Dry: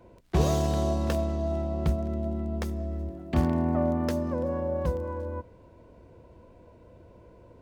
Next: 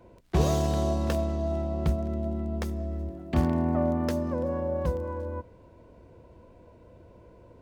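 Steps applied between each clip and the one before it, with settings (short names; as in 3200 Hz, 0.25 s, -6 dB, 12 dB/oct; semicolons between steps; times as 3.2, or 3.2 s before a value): nothing audible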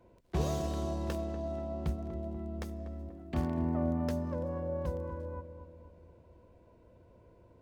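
darkening echo 0.242 s, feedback 55%, low-pass 1100 Hz, level -9 dB; gain -8 dB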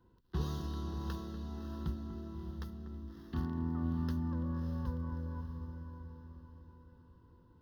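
fixed phaser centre 2300 Hz, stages 6; diffused feedback echo 0.623 s, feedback 43%, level -7 dB; gain -2.5 dB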